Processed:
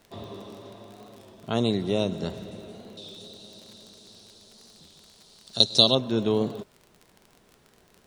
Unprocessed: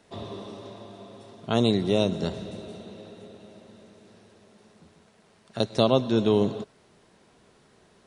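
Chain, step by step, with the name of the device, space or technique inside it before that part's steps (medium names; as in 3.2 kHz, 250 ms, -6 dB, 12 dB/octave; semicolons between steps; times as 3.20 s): 2.98–5.95 s: resonant high shelf 2.9 kHz +12 dB, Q 3; warped LP (warped record 33 1/3 rpm, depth 100 cents; crackle 32 per s -35 dBFS; pink noise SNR 38 dB); trim -2.5 dB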